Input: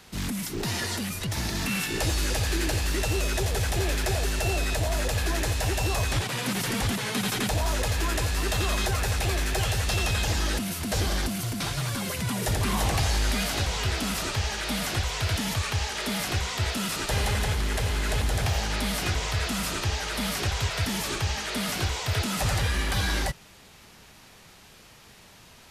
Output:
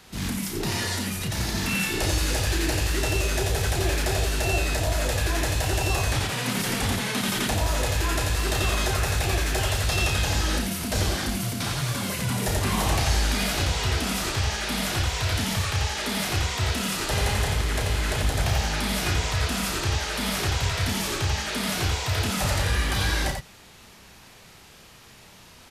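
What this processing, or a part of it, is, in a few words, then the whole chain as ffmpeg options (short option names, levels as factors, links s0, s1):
slapback doubling: -filter_complex "[0:a]asplit=3[s0][s1][s2];[s1]adelay=32,volume=0.531[s3];[s2]adelay=89,volume=0.596[s4];[s0][s3][s4]amix=inputs=3:normalize=0"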